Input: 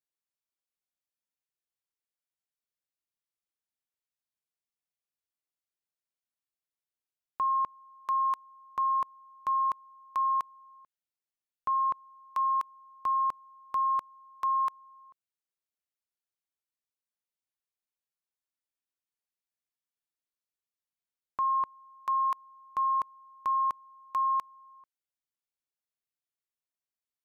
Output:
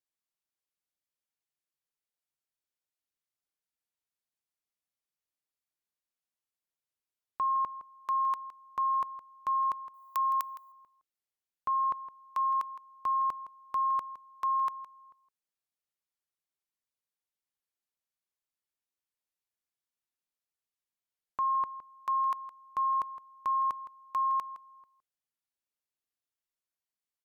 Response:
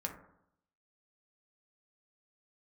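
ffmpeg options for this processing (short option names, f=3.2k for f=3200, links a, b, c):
-filter_complex "[0:a]asettb=1/sr,asplit=3[a][b][c];[a]atrim=end=9.944[d];[b]atrim=start=9.94:end=10.72,asetpts=PTS-STARTPTS,afade=t=in:d=0.004:c=qsin,afade=t=out:st=0.776:d=0.004:c=qsin,aemphasis=mode=production:type=riaa[e];[c]atrim=start=10.716[f];[d][e]acrossfade=d=0.004:c1=hsin:c2=qsin[g];[g][f]acrossfade=d=0.004:c1=qsin:c2=hsin,asplit=2[h][i];[i]adelay=163.3,volume=-14dB,highshelf=f=4k:g=-3.67[j];[h][j]amix=inputs=2:normalize=0,volume=-1dB" -ar 48000 -c:a libmp3lame -b:a 192k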